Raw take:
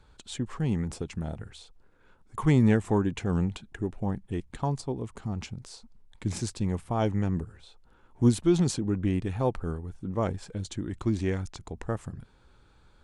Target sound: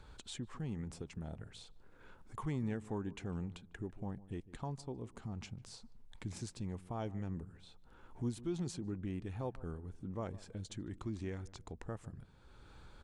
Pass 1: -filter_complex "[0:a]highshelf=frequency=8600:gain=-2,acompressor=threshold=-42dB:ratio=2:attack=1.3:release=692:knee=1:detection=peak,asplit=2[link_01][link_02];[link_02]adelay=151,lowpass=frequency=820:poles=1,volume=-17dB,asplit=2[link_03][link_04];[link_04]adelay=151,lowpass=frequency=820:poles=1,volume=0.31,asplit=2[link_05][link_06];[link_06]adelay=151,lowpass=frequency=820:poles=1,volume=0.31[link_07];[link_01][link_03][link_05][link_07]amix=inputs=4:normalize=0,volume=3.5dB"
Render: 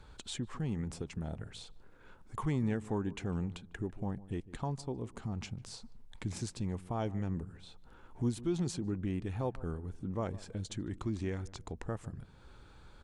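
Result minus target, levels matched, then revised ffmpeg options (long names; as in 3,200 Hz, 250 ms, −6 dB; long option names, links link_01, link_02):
downward compressor: peak gain reduction −5 dB
-filter_complex "[0:a]highshelf=frequency=8600:gain=-2,acompressor=threshold=-52.5dB:ratio=2:attack=1.3:release=692:knee=1:detection=peak,asplit=2[link_01][link_02];[link_02]adelay=151,lowpass=frequency=820:poles=1,volume=-17dB,asplit=2[link_03][link_04];[link_04]adelay=151,lowpass=frequency=820:poles=1,volume=0.31,asplit=2[link_05][link_06];[link_06]adelay=151,lowpass=frequency=820:poles=1,volume=0.31[link_07];[link_01][link_03][link_05][link_07]amix=inputs=4:normalize=0,volume=3.5dB"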